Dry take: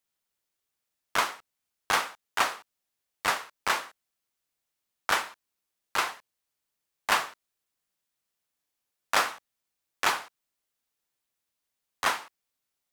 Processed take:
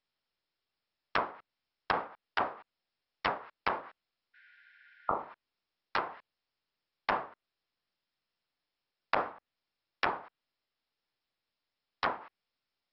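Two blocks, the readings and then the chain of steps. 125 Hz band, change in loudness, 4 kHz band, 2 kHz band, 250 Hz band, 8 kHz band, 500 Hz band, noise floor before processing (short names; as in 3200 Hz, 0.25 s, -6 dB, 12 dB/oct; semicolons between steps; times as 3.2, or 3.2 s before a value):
+0.5 dB, -6.5 dB, -12.0 dB, -8.0 dB, 0.0 dB, under -40 dB, -0.5 dB, -84 dBFS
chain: treble ducked by the level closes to 760 Hz, closed at -25.5 dBFS; spectral repair 4.37–5.24, 1400–8000 Hz after; MP2 48 kbps 44100 Hz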